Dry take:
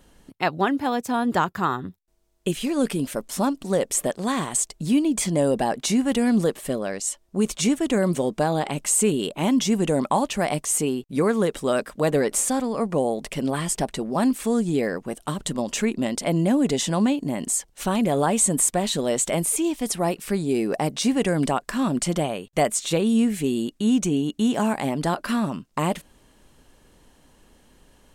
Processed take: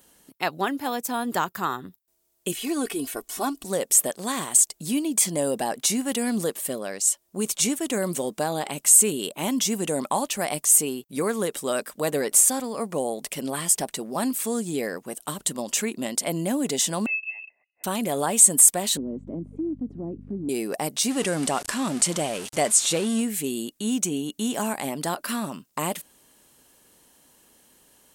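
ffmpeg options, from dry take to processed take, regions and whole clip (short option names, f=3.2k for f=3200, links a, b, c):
-filter_complex "[0:a]asettb=1/sr,asplit=3[a][b][c];[a]atrim=end=2.524[d];[b]atrim=start=2.52:end=3.64,asetpts=PTS-STARTPTS,afade=t=in:d=0.004:c=qsin,afade=t=out:st=1.116:d=0.004:c=qsin,aecho=1:1:2.7:0.74,atrim=end_sample=49392,asubboost=boost=9:cutoff=68,acrossover=split=3400[e][f];[f]acompressor=threshold=-39dB:ratio=4:attack=1:release=60[g];[e][g]amix=inputs=2:normalize=0[h];[c]atrim=start=3.636[i];[d][h]acrossfade=d=0.004:c1=hsin:c2=qsin[j];[j][i]acrossfade=d=0.004:c1=qsin:c2=hsin,asettb=1/sr,asplit=3[k][l][m];[k]atrim=end=17.064[n];[l]atrim=start=17.06:end=17.84,asetpts=PTS-STARTPTS,afade=t=in:d=0.004:c=qsin,afade=t=out:st=0.776:d=0.004:c=qsin,asplit=3[o][p][q];[o]bandpass=f=300:t=q:w=8,volume=0dB[r];[p]bandpass=f=870:t=q:w=8,volume=-6dB[s];[q]bandpass=f=2.24k:t=q:w=8,volume=-9dB[t];[r][s][t]amix=inputs=3:normalize=0,lowpass=f=2.5k:t=q:w=0.5098,lowpass=f=2.5k:t=q:w=0.6013,lowpass=f=2.5k:t=q:w=0.9,lowpass=f=2.5k:t=q:w=2.563,afreqshift=-2900[u];[m]atrim=start=17.836[v];[n][u]acrossfade=d=0.004:c1=hsin:c2=qsin[w];[w][v]acrossfade=d=0.004:c1=qsin:c2=hsin,asettb=1/sr,asplit=3[x][y][z];[x]atrim=end=18.974[aa];[y]atrim=start=18.97:end=20.49,asetpts=PTS-STARTPTS,afade=t=in:d=0.004:c=qsin,afade=t=out:st=1.516:d=0.004:c=qsin,lowpass=f=280:t=q:w=3.3,aeval=exprs='val(0)+0.0316*(sin(2*PI*50*n/s)+sin(2*PI*2*50*n/s)/2+sin(2*PI*3*50*n/s)/3+sin(2*PI*4*50*n/s)/4+sin(2*PI*5*50*n/s)/5)':c=same,acompressor=threshold=-24dB:ratio=2:attack=3.2:release=140:knee=1:detection=peak[ab];[z]atrim=start=20.486[ac];[aa][ab]acrossfade=d=0.004:c1=hsin:c2=qsin[ad];[ad][ac]acrossfade=d=0.004:c1=qsin:c2=hsin,asettb=1/sr,asplit=3[ae][af][ag];[ae]atrim=end=21.104[ah];[af]atrim=start=21.1:end=23.21,asetpts=PTS-STARTPTS,afade=t=in:d=0.004:c=qsin,afade=t=out:st=2.106:d=0.004:c=qsin,aeval=exprs='val(0)+0.5*0.0398*sgn(val(0))':c=same,lowpass=f=10k:w=0.5412,lowpass=f=10k:w=1.3066[ai];[ag]atrim=start=23.206[aj];[ah][ai]acrossfade=d=0.004:c1=hsin:c2=qsin[ak];[ak][aj]acrossfade=d=0.004:c1=qsin:c2=hsin,highpass=f=230:p=1,aemphasis=mode=production:type=50fm,volume=-3dB"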